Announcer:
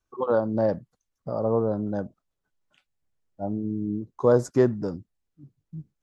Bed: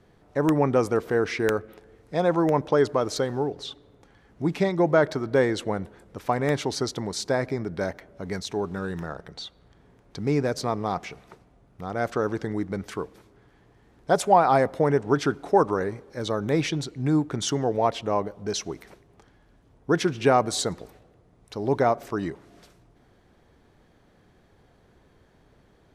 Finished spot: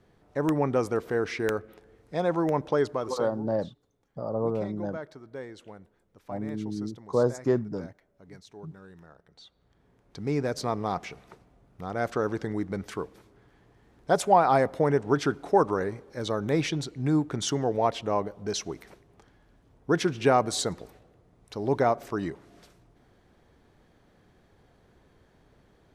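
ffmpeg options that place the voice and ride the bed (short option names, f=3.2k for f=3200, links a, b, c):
-filter_complex "[0:a]adelay=2900,volume=-4.5dB[a];[1:a]volume=12.5dB,afade=t=out:st=2.77:d=0.68:silence=0.188365,afade=t=in:st=9.26:d=1.47:silence=0.149624[b];[a][b]amix=inputs=2:normalize=0"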